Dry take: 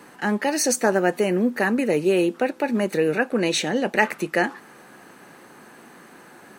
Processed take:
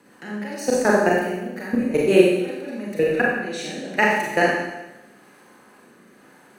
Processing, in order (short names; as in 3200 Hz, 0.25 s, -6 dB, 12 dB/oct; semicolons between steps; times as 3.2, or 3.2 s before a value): rotary speaker horn 5.5 Hz, later 0.85 Hz, at 2.33; level quantiser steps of 20 dB; Schroeder reverb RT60 1 s, combs from 30 ms, DRR -4.5 dB; gain +3 dB